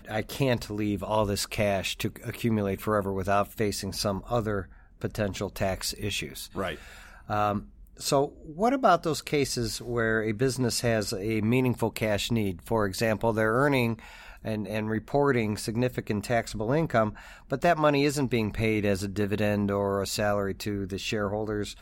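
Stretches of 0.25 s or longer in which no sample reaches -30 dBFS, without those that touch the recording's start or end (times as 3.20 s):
4.62–5.02 s
6.75–7.30 s
7.59–8.01 s
8.26–8.59 s
13.94–14.45 s
17.10–17.52 s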